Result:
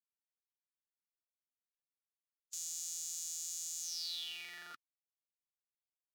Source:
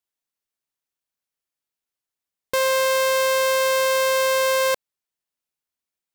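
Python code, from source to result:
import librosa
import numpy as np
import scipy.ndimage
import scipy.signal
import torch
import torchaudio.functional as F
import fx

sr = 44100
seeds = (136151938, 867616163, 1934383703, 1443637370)

y = fx.spec_gate(x, sr, threshold_db=-30, keep='weak')
y = fx.filter_sweep_bandpass(y, sr, from_hz=6900.0, to_hz=380.0, start_s=3.81, end_s=5.47, q=7.7)
y = fx.graphic_eq(y, sr, hz=(125, 250, 500, 1000, 2000, 4000, 8000), db=(8, 6, 5, -6, -7, 3, -5))
y = y * librosa.db_to_amplitude(12.5)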